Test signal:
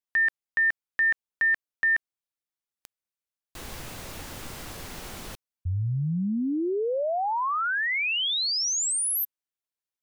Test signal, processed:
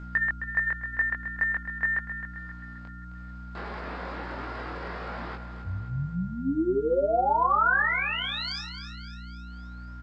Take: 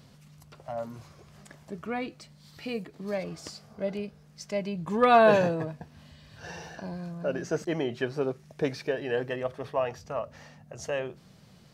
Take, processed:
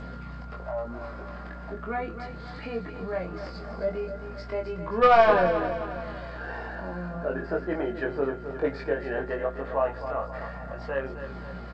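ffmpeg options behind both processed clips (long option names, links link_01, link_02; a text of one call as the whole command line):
ffmpeg -i in.wav -filter_complex "[0:a]highpass=280,acrossover=split=3100[link_01][link_02];[link_02]acompressor=threshold=-34dB:ratio=4:attack=1:release=60[link_03];[link_01][link_03]amix=inputs=2:normalize=0,highshelf=frequency=2200:width_type=q:width=1.5:gain=-10.5,acompressor=mode=upward:threshold=-28dB:ratio=2.5:attack=0.1:release=199:knee=2.83:detection=peak,aeval=exprs='val(0)+0.01*(sin(2*PI*60*n/s)+sin(2*PI*2*60*n/s)/2+sin(2*PI*3*60*n/s)/3+sin(2*PI*4*60*n/s)/4+sin(2*PI*5*60*n/s)/5)':channel_layout=same,flanger=delay=0.3:depth=6.8:regen=-55:speed=0.18:shape=triangular,aresample=11025,aeval=exprs='clip(val(0),-1,0.0944)':channel_layout=same,aresample=44100,aeval=exprs='val(0)+0.00251*sin(2*PI*1400*n/s)':channel_layout=same,asplit=2[link_04][link_05];[link_05]adelay=22,volume=-3dB[link_06];[link_04][link_06]amix=inputs=2:normalize=0,asplit=2[link_07][link_08];[link_08]aecho=0:1:264|528|792|1056|1320:0.316|0.155|0.0759|0.0372|0.0182[link_09];[link_07][link_09]amix=inputs=2:normalize=0,volume=4dB" -ar 16000 -c:a g722 out.g722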